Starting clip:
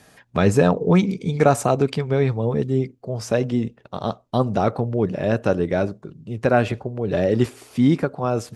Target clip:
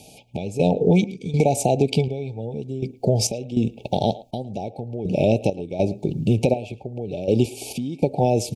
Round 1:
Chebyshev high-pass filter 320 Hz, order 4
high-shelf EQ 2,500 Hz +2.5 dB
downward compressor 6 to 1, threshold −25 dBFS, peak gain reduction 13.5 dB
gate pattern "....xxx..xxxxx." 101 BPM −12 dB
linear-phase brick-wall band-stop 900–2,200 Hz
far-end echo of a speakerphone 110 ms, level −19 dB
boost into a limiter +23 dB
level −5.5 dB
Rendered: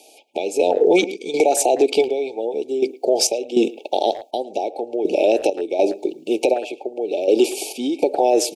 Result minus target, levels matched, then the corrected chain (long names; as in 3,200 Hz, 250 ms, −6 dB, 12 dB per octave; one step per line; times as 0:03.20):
downward compressor: peak gain reduction −7.5 dB; 250 Hz band −3.5 dB
high-shelf EQ 2,500 Hz +2.5 dB
downward compressor 6 to 1, threshold −33 dBFS, peak gain reduction 21 dB
gate pattern "....xxx..xxxxx." 101 BPM −12 dB
linear-phase brick-wall band-stop 900–2,200 Hz
far-end echo of a speakerphone 110 ms, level −19 dB
boost into a limiter +23 dB
level −5.5 dB